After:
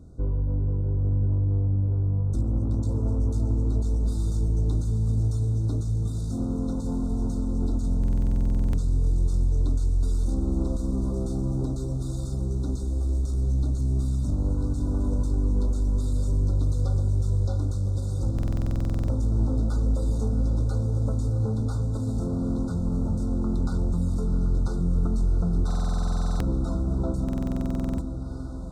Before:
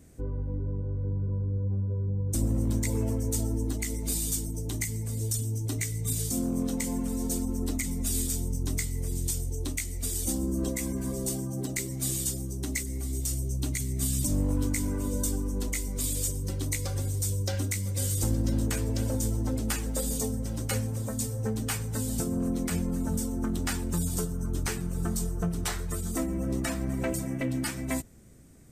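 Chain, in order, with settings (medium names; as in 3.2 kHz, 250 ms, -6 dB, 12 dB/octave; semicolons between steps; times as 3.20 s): in parallel at +2.5 dB: hard clipper -33 dBFS, distortion -7 dB; on the sum: peak limiter -20 dBFS, peak gain reduction 5.5 dB; tape spacing loss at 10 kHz 21 dB; on a send: echo that smears into a reverb 731 ms, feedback 66%, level -9 dB; on the sum: FFT band-reject 1.5–3.5 kHz; bass shelf 150 Hz +7 dB; buffer glitch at 7.99/18.34/25.66/27.24 s, samples 2048, times 15; trim -3.5 dB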